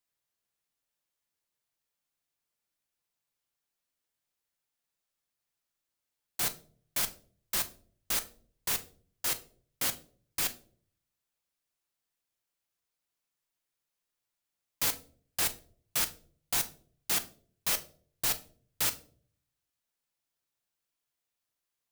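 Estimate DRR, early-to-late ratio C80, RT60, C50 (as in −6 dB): 8.0 dB, 21.5 dB, non-exponential decay, 16.5 dB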